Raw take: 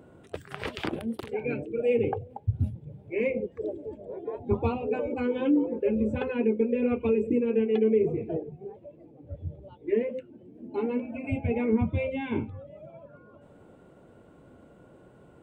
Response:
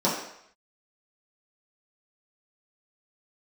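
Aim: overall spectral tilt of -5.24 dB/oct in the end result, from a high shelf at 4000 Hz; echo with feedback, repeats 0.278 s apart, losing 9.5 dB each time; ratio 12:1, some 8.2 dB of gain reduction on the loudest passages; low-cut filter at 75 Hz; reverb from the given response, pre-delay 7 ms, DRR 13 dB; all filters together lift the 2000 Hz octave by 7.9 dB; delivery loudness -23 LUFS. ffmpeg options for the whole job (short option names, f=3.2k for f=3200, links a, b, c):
-filter_complex "[0:a]highpass=75,equalizer=f=2k:t=o:g=7.5,highshelf=f=4k:g=8.5,acompressor=threshold=-27dB:ratio=12,aecho=1:1:278|556|834|1112:0.335|0.111|0.0365|0.012,asplit=2[a][b];[1:a]atrim=start_sample=2205,adelay=7[c];[b][c]afir=irnorm=-1:irlink=0,volume=-27.5dB[d];[a][d]amix=inputs=2:normalize=0,volume=9.5dB"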